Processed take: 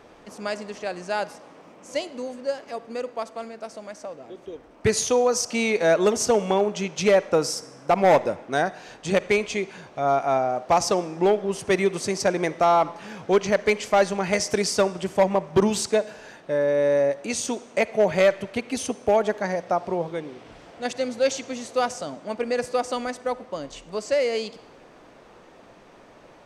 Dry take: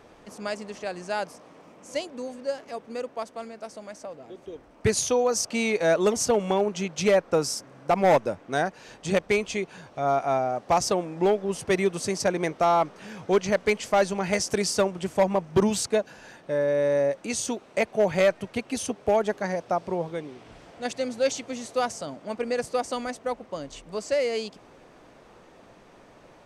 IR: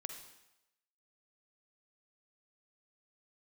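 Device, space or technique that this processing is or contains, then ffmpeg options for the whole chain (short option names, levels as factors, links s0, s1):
filtered reverb send: -filter_complex "[0:a]asplit=2[s0][s1];[s1]highpass=160,lowpass=8100[s2];[1:a]atrim=start_sample=2205[s3];[s2][s3]afir=irnorm=-1:irlink=0,volume=0.531[s4];[s0][s4]amix=inputs=2:normalize=0"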